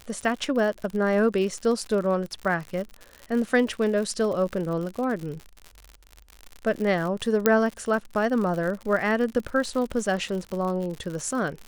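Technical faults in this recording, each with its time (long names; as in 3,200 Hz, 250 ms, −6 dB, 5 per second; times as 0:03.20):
surface crackle 80 per second −31 dBFS
0:07.46: click −5 dBFS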